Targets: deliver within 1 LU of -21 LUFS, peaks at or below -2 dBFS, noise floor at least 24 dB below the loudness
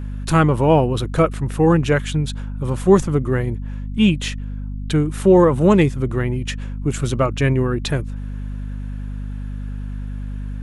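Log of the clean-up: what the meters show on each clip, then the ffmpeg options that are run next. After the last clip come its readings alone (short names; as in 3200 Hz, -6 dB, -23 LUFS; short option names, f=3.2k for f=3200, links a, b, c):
hum 50 Hz; harmonics up to 250 Hz; hum level -25 dBFS; loudness -18.5 LUFS; peak -2.0 dBFS; loudness target -21.0 LUFS
-> -af "bandreject=f=50:t=h:w=6,bandreject=f=100:t=h:w=6,bandreject=f=150:t=h:w=6,bandreject=f=200:t=h:w=6,bandreject=f=250:t=h:w=6"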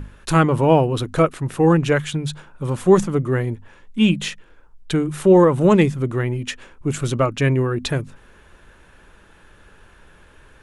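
hum none; loudness -19.0 LUFS; peak -2.5 dBFS; loudness target -21.0 LUFS
-> -af "volume=-2dB"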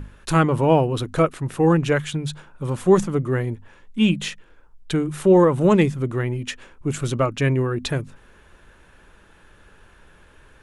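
loudness -21.0 LUFS; peak -4.5 dBFS; noise floor -52 dBFS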